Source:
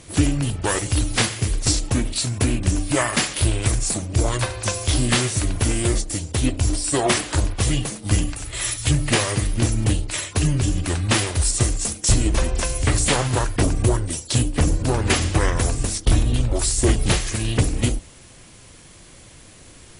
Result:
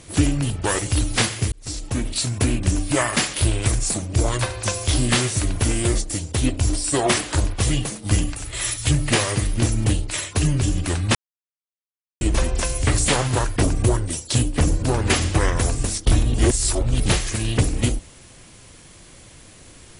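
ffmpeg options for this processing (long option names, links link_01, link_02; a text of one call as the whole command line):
ffmpeg -i in.wav -filter_complex "[0:a]asplit=6[link_01][link_02][link_03][link_04][link_05][link_06];[link_01]atrim=end=1.52,asetpts=PTS-STARTPTS,afade=type=out:start_time=1.516:duration=0.004:curve=hsin[link_07];[link_02]atrim=start=1.52:end=11.15,asetpts=PTS-STARTPTS,afade=type=in:duration=0.65,afade=type=out:start_time=9.626:duration=0.004:curve=hsin[link_08];[link_03]atrim=start=11.15:end=12.21,asetpts=PTS-STARTPTS,volume=0[link_09];[link_04]atrim=start=12.21:end=16.342,asetpts=PTS-STARTPTS,afade=type=in:duration=0.004:curve=hsin[link_10];[link_05]atrim=start=16.338:end=17.002,asetpts=PTS-STARTPTS,areverse[link_11];[link_06]atrim=start=16.998[link_12];[link_07][link_08][link_09][link_10]concat=n=4:v=0:a=1[link_13];[link_13][link_11]acrossfade=duration=0.004:curve1=hsin:curve2=hsin[link_14];[link_14][link_12]acrossfade=duration=0.004:curve1=hsin:curve2=hsin" out.wav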